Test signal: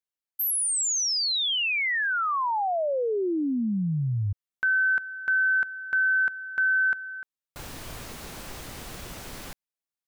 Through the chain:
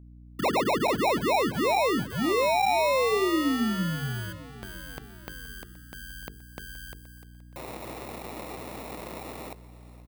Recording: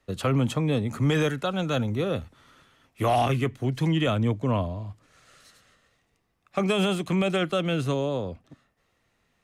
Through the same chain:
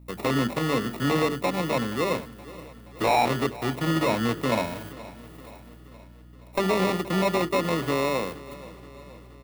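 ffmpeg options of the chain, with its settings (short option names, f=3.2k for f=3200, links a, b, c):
-filter_complex "[0:a]acrusher=samples=28:mix=1:aa=0.000001,highpass=210,bandreject=f=50:t=h:w=6,bandreject=f=100:t=h:w=6,bandreject=f=150:t=h:w=6,bandreject=f=200:t=h:w=6,bandreject=f=250:t=h:w=6,bandreject=f=300:t=h:w=6,bandreject=f=350:t=h:w=6,bandreject=f=400:t=h:w=6,bandreject=f=450:t=h:w=6,dynaudnorm=f=150:g=3:m=3dB,volume=14dB,asoftclip=hard,volume=-14dB,aeval=exprs='val(0)+0.00447*(sin(2*PI*60*n/s)+sin(2*PI*2*60*n/s)/2+sin(2*PI*3*60*n/s)/3+sin(2*PI*4*60*n/s)/4+sin(2*PI*5*60*n/s)/5)':c=same,aexciter=amount=3.4:drive=4.3:freq=8.5k,acrossover=split=5600[a][b];[b]acompressor=threshold=-41dB:ratio=4:attack=1:release=60[c];[a][c]amix=inputs=2:normalize=0,aecho=1:1:474|948|1422|1896|2370:0.119|0.0689|0.04|0.0232|0.0134"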